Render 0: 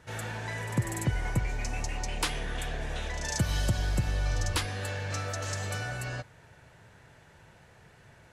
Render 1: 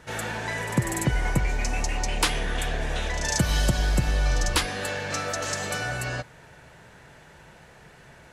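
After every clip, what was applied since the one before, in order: peaking EQ 99 Hz -12.5 dB 0.38 oct; trim +7 dB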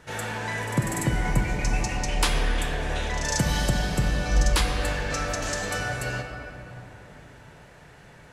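simulated room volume 220 m³, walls hard, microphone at 0.32 m; trim -1.5 dB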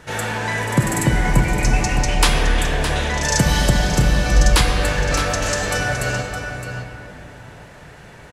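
delay 614 ms -10 dB; trim +7.5 dB

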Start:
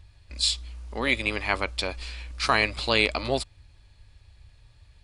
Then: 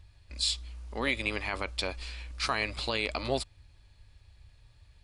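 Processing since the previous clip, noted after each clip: peak limiter -13.5 dBFS, peak gain reduction 7.5 dB; trim -3.5 dB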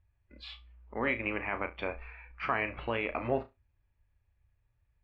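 low-pass 2.4 kHz 24 dB/octave; spectral noise reduction 16 dB; on a send: flutter echo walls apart 5.9 m, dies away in 0.21 s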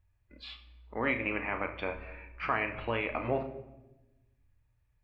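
simulated room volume 460 m³, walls mixed, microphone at 0.51 m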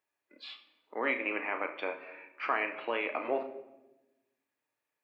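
high-pass 290 Hz 24 dB/octave

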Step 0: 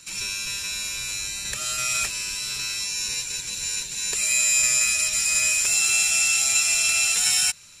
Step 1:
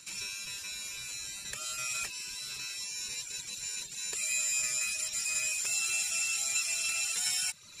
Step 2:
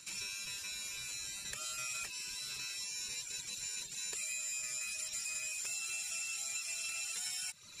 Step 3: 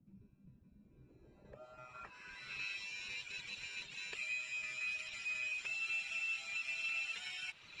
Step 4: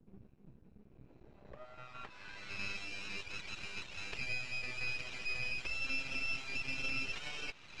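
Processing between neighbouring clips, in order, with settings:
reverse; upward compressor, threshold -25 dBFS; reverse; bass shelf 62 Hz -10 dB; reverb removal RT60 0.92 s; trim -8.5 dB
compression, threshold -35 dBFS, peak gain reduction 8.5 dB; trim -2 dB
added noise white -60 dBFS; low-pass sweep 210 Hz -> 2.8 kHz, 0.76–2.66 s; trim -2 dB
half-wave rectifier; distance through air 92 m; trim +7.5 dB

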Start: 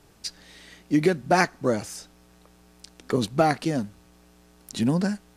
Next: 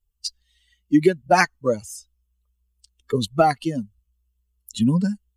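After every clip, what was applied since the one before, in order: expander on every frequency bin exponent 2; trim +6.5 dB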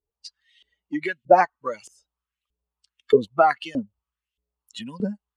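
in parallel at 0 dB: compression, threshold -24 dBFS, peak gain reduction 13.5 dB; on the sum: LFO band-pass saw up 1.6 Hz 380–3200 Hz; trim +5 dB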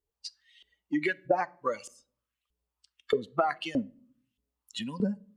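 compression 8:1, threshold -23 dBFS, peak gain reduction 14.5 dB; on a send at -19.5 dB: reverberation RT60 0.55 s, pre-delay 6 ms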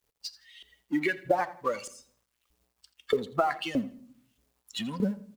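companding laws mixed up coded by mu; feedback delay 83 ms, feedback 32%, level -18.5 dB

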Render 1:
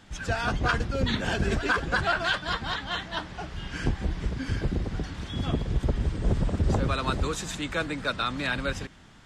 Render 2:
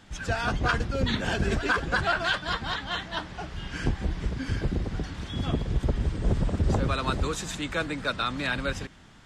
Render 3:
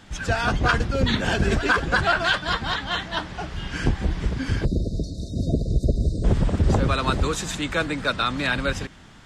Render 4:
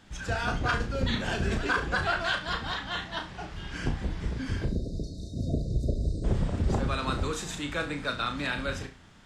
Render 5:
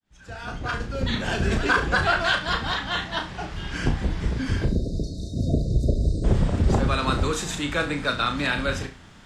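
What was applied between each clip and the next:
no audible change
spectral selection erased 4.65–6.24 s, 700–3600 Hz; trim +5 dB
flutter echo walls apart 5.9 m, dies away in 0.3 s; trim -8 dB
fade-in on the opening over 1.70 s; trim +6.5 dB

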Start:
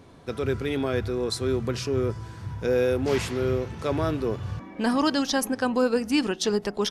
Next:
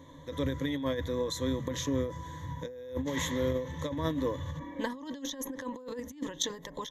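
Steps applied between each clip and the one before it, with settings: rippled EQ curve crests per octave 1.1, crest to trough 18 dB; compressor with a negative ratio -23 dBFS, ratio -0.5; endings held to a fixed fall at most 110 dB/s; trim -8 dB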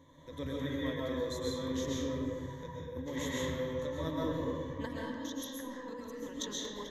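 reverberation RT60 1.6 s, pre-delay 90 ms, DRR -4.5 dB; trim -8.5 dB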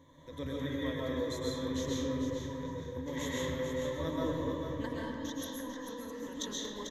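feedback delay 445 ms, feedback 26%, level -7.5 dB

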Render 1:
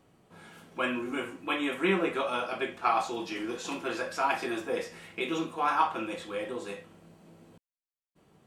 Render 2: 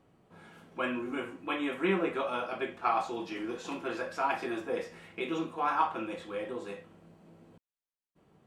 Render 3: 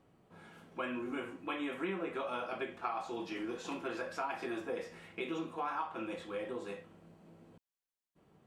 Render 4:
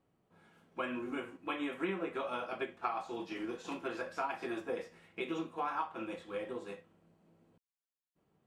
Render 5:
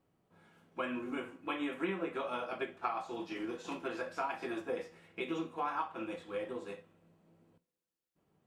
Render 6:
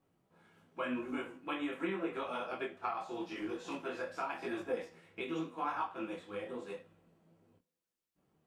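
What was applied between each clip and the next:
treble shelf 3.3 kHz -8.5 dB; trim -1.5 dB
compression 6:1, threshold -32 dBFS, peak gain reduction 10 dB; trim -2 dB
upward expansion 1.5:1, over -56 dBFS; trim +2.5 dB
two-slope reverb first 0.43 s, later 2.1 s, from -18 dB, DRR 14.5 dB
detune thickener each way 30 cents; trim +3 dB

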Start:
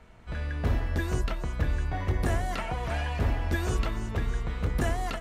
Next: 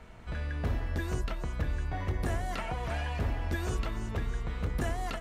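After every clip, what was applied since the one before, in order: compression 1.5:1, threshold -44 dBFS, peak gain reduction 8.5 dB; trim +3 dB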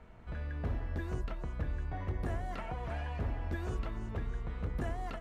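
treble shelf 2.9 kHz -11.5 dB; trim -4 dB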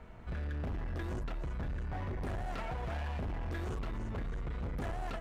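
hard clipper -38 dBFS, distortion -8 dB; trim +3.5 dB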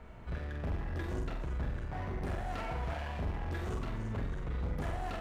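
flutter echo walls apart 7.9 m, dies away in 0.51 s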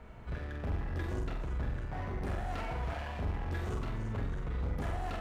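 reverberation RT60 0.50 s, pre-delay 3 ms, DRR 12.5 dB

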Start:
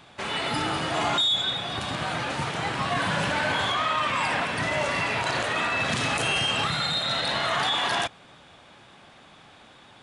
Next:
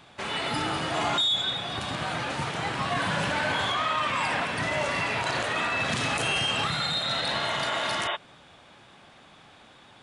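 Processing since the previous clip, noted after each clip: spectral replace 7.43–8.13 s, 330–3800 Hz before; trim -1.5 dB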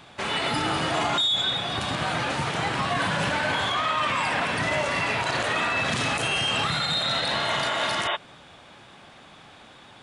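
peak limiter -20 dBFS, peak gain reduction 4.5 dB; trim +4 dB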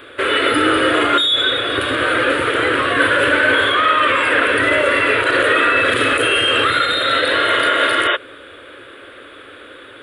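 FFT filter 110 Hz 0 dB, 180 Hz -20 dB, 280 Hz +9 dB, 520 Hz +14 dB, 790 Hz -10 dB, 1.4 kHz +12 dB, 2.3 kHz +5 dB, 3.4 kHz +5 dB, 5.9 kHz -17 dB, 9.6 kHz +6 dB; trim +4 dB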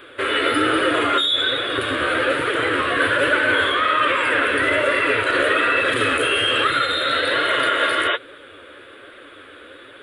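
flange 1.2 Hz, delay 4.6 ms, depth 9.9 ms, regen +38%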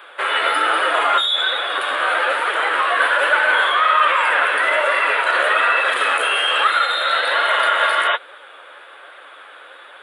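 resonant high-pass 810 Hz, resonance Q 3.6

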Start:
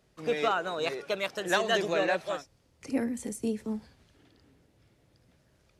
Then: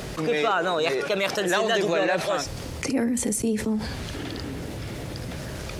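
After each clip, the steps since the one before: level flattener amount 70%; trim +1.5 dB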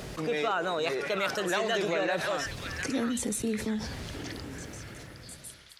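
fade out at the end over 1.61 s; repeats whose band climbs or falls 706 ms, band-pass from 1.7 kHz, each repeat 1.4 oct, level -2.5 dB; trim -6 dB

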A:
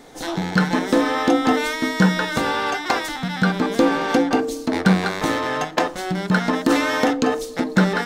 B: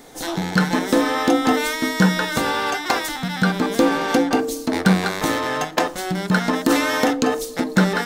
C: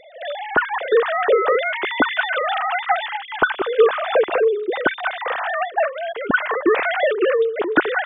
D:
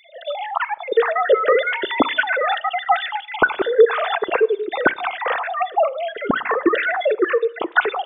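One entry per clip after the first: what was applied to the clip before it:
treble shelf 8.5 kHz +11 dB
formants replaced by sine waves
random holes in the spectrogram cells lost 39%; reverberation RT60 0.65 s, pre-delay 32 ms, DRR 20 dB; trim +2.5 dB

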